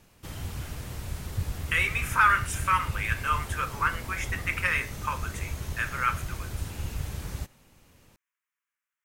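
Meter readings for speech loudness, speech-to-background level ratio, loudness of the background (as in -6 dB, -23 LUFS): -27.5 LUFS, 9.0 dB, -36.5 LUFS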